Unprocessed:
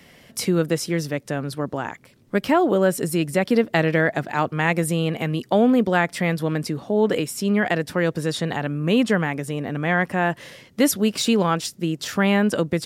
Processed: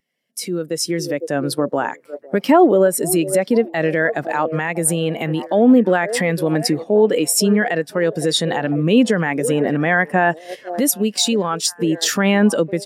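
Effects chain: repeats whose band climbs or falls 505 ms, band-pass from 470 Hz, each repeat 0.7 oct, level -11 dB; compression 2:1, threshold -31 dBFS, peak gain reduction 10.5 dB; peak limiter -21 dBFS, peak gain reduction 9.5 dB; high-pass 150 Hz; bass shelf 260 Hz -5 dB; gate -38 dBFS, range -7 dB; treble shelf 4.6 kHz +9.5 dB; level rider gain up to 16 dB; spectral contrast expander 1.5:1

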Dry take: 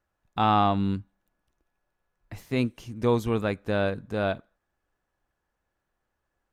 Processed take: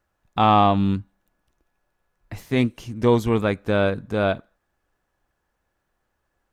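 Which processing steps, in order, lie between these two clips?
loudspeaker Doppler distortion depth 0.11 ms; trim +5.5 dB

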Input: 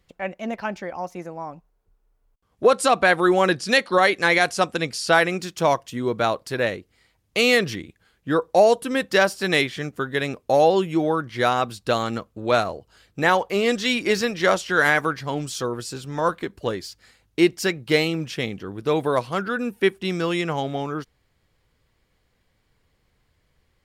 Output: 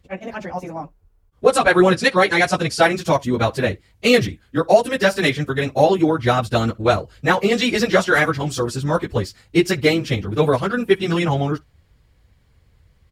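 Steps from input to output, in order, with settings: peaking EQ 71 Hz +13.5 dB 1.9 oct; echo from a far wall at 19 m, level -26 dB; plain phase-vocoder stretch 0.55×; level rider gain up to 5 dB; trim +2 dB

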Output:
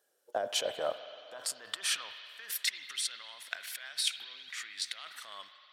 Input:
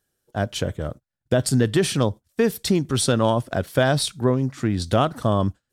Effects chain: fade out at the end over 0.82 s; compressor with a negative ratio -28 dBFS, ratio -1; high-pass sweep 530 Hz -> 2.1 kHz, 0.33–2.88 s; on a send: tilt EQ +3 dB/octave + reverberation RT60 3.2 s, pre-delay 47 ms, DRR 9 dB; on the sum: trim -7 dB

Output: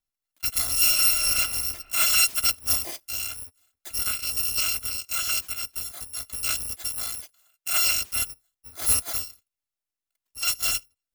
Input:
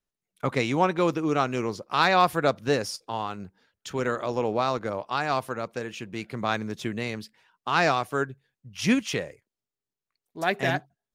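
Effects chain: bit-reversed sample order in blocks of 256 samples; 0.74–1.26 s: reverb throw, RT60 2.3 s, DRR -5.5 dB; 6.89–7.82 s: bass shelf 230 Hz -7.5 dB

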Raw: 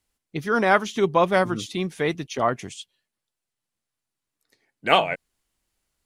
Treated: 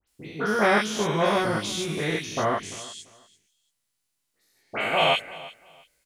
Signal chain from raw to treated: spectrogram pixelated in time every 200 ms; treble shelf 2.5 kHz +9.5 dB; doubling 19 ms -4 dB; phase dispersion highs, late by 78 ms, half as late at 2.7 kHz; on a send: feedback delay 341 ms, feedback 22%, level -19 dB

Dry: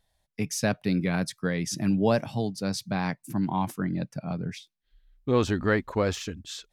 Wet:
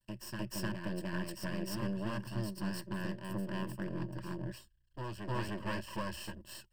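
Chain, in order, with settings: comb filter that takes the minimum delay 0.72 ms; half-wave rectifier; rippled EQ curve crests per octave 1.3, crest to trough 14 dB; compression 4:1, threshold -30 dBFS, peak gain reduction 9 dB; peaking EQ 130 Hz +4.5 dB 0.26 oct; on a send: reverse echo 305 ms -4.5 dB; on the sum: trim -5 dB

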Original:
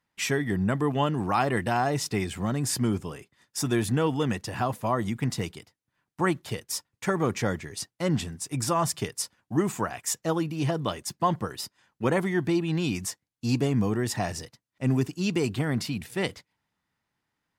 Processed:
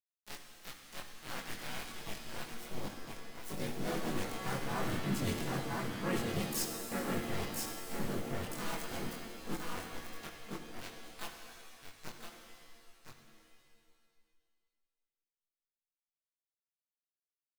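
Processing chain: Doppler pass-by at 5.68 s, 11 m/s, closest 7.4 m; small samples zeroed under -33 dBFS; bass shelf 150 Hz +7.5 dB; harmony voices +4 st -3 dB, +7 st -4 dB; delay 1014 ms -7.5 dB; chorus voices 6, 1.5 Hz, delay 23 ms, depth 3 ms; reverse; compression 4:1, threshold -40 dBFS, peak gain reduction 18 dB; reverse; treble shelf 7.3 kHz +4.5 dB; pitch-shifted reverb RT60 1.8 s, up +7 st, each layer -2 dB, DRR 5 dB; trim +4 dB

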